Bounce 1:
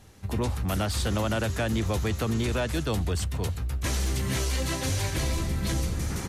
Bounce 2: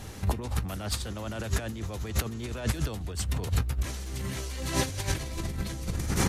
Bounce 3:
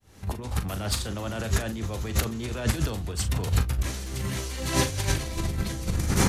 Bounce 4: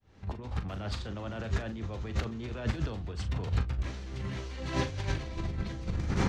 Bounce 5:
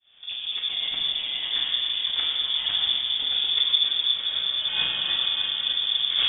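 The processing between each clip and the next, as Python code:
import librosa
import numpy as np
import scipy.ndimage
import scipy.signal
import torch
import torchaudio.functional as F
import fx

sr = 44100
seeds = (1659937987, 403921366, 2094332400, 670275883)

y1 = fx.over_compress(x, sr, threshold_db=-33.0, ratio=-0.5)
y1 = y1 * librosa.db_to_amplitude(4.0)
y2 = fx.fade_in_head(y1, sr, length_s=0.69)
y2 = fx.doubler(y2, sr, ms=40.0, db=-10)
y2 = y2 * librosa.db_to_amplitude(3.5)
y3 = fx.air_absorb(y2, sr, metres=170.0)
y3 = y3 * librosa.db_to_amplitude(-5.5)
y4 = y3 + 10.0 ** (-9.0 / 20.0) * np.pad(y3, (int(619 * sr / 1000.0), 0))[:len(y3)]
y4 = fx.room_shoebox(y4, sr, seeds[0], volume_m3=140.0, walls='hard', distance_m=0.64)
y4 = fx.freq_invert(y4, sr, carrier_hz=3500)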